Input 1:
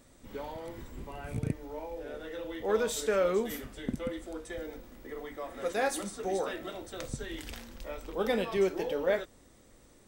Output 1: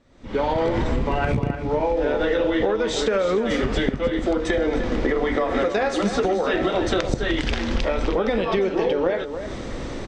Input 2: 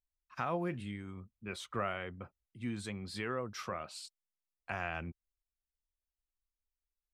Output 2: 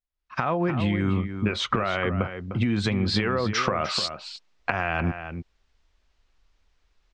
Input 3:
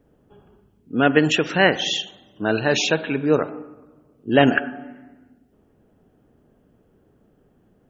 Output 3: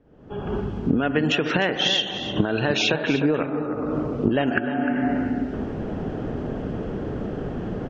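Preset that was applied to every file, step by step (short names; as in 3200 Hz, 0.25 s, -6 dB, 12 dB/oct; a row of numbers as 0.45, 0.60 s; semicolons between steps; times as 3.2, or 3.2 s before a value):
recorder AGC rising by 53 dB/s; Bessel low-pass 4000 Hz, order 6; compressor, threshold -17 dBFS; outdoor echo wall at 52 m, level -9 dB; normalise peaks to -6 dBFS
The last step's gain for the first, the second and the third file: -1.5, -3.0, -0.5 dB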